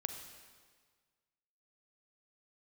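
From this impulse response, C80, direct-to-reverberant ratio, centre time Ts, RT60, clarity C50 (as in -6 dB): 8.0 dB, 6.0 dB, 31 ms, 1.6 s, 6.5 dB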